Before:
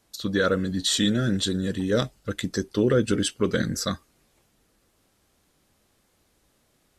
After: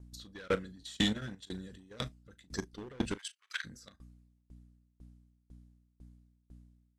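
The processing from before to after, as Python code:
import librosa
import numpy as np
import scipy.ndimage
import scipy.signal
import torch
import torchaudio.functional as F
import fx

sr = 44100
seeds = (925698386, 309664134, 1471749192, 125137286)

y = fx.add_hum(x, sr, base_hz=60, snr_db=10)
y = np.clip(10.0 ** (19.0 / 20.0) * y, -1.0, 1.0) / 10.0 ** (19.0 / 20.0)
y = fx.high_shelf(y, sr, hz=7000.0, db=8.0)
y = fx.level_steps(y, sr, step_db=12)
y = fx.highpass(y, sr, hz=1400.0, slope=24, at=(3.14, 3.64), fade=0.02)
y = fx.dynamic_eq(y, sr, hz=2200.0, q=0.84, threshold_db=-43.0, ratio=4.0, max_db=6)
y = scipy.signal.sosfilt(scipy.signal.butter(2, 9500.0, 'lowpass', fs=sr, output='sos'), y)
y = fx.doubler(y, sr, ms=38.0, db=-14)
y = fx.tremolo_decay(y, sr, direction='decaying', hz=2.0, depth_db=28)
y = F.gain(torch.from_numpy(y), -2.0).numpy()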